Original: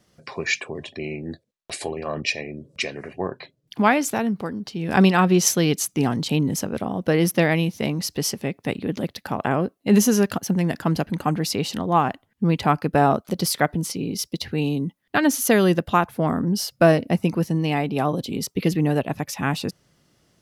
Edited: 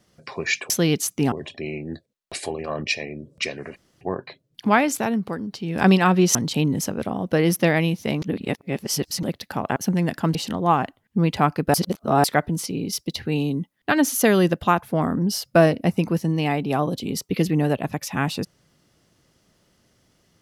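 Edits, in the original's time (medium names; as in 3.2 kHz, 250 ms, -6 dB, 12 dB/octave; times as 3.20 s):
3.14 s: insert room tone 0.25 s
5.48–6.10 s: move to 0.70 s
7.97–8.98 s: reverse
9.51–10.38 s: delete
10.97–11.61 s: delete
13.00–13.50 s: reverse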